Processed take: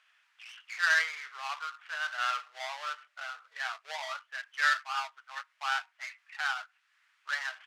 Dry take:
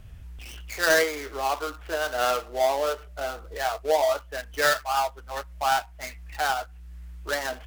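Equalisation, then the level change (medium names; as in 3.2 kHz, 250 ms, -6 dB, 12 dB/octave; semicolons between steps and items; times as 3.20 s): high-pass 1.3 kHz 24 dB/octave; tape spacing loss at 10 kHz 21 dB; +2.5 dB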